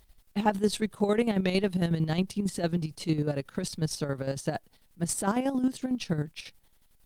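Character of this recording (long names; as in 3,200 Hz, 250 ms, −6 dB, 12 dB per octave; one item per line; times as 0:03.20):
a quantiser's noise floor 12 bits, dither triangular
chopped level 11 Hz, depth 60%, duty 45%
Opus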